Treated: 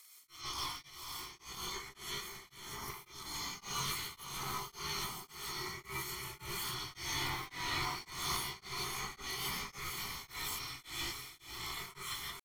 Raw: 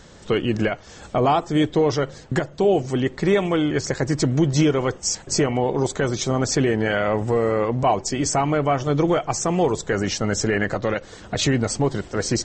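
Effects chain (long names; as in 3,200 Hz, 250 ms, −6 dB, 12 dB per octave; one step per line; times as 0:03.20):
gate on every frequency bin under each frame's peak −20 dB weak
parametric band 200 Hz +10 dB 0.41 octaves
comb filter 1.8 ms, depth 85%
volume swells 396 ms
brickwall limiter −26 dBFS, peak gain reduction 6.5 dB
hard clipping −35 dBFS, distortion −11 dB
pitch shifter +11.5 semitones
feedback delay with all-pass diffusion 515 ms, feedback 49%, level −7 dB
reverb whose tail is shaped and stops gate 190 ms rising, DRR −6.5 dB
tremolo along a rectified sine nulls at 1.8 Hz
level −4.5 dB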